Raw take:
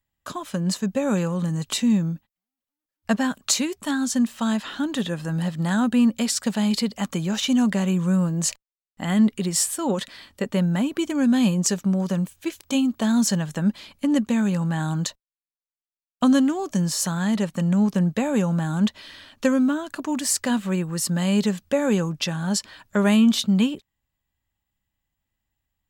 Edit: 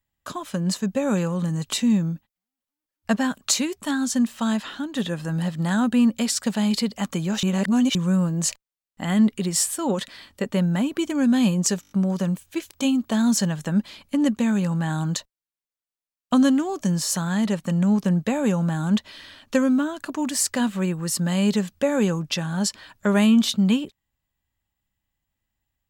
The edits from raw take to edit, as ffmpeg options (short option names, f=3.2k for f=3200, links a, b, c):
-filter_complex "[0:a]asplit=9[a][b][c][d][e][f][g][h][i];[a]atrim=end=4.95,asetpts=PTS-STARTPTS,afade=t=out:st=4.63:d=0.32:silence=0.375837[j];[b]atrim=start=4.95:end=7.432,asetpts=PTS-STARTPTS,afade=t=in:d=0.004:c=hsin:silence=0.375837[k];[c]atrim=start=7.428:end=7.952,asetpts=PTS-STARTPTS,areverse[l];[d]atrim=start=7.948:end=11.832[m];[e]atrim=start=11.808:end=11.832[n];[f]atrim=start=11.808:end=11.832[o];[g]atrim=start=11.808:end=11.832[p];[h]atrim=start=11.808:end=11.832[q];[i]atrim=start=11.808[r];[j][k]concat=n=2:v=0:a=1[s];[s][l]acrossfade=d=0.004:c1=hsin:c2=hsin[t];[t][m]acrossfade=d=0.004:c1=hsin:c2=hsin[u];[u][n]acrossfade=d=0.004:c1=hsin:c2=hsin[v];[v][o]acrossfade=d=0.004:c1=hsin:c2=hsin[w];[w][p]acrossfade=d=0.004:c1=hsin:c2=hsin[x];[x][q]acrossfade=d=0.004:c1=hsin:c2=hsin[y];[y][r]acrossfade=d=0.004:c1=hsin:c2=hsin"